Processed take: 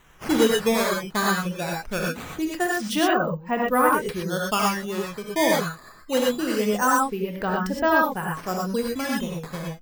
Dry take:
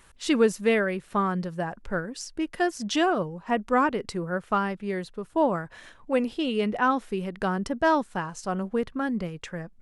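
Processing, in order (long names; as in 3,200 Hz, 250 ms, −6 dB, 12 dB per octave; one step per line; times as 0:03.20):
reverb reduction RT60 0.92 s
sample-and-hold swept by an LFO 9×, swing 160% 0.23 Hz
reverb whose tail is shaped and stops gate 140 ms rising, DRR −2 dB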